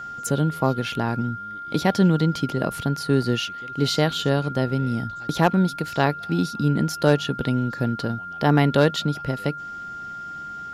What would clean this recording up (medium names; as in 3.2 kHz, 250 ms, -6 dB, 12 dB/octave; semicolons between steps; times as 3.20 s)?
clip repair -8 dBFS; band-stop 1.4 kHz, Q 30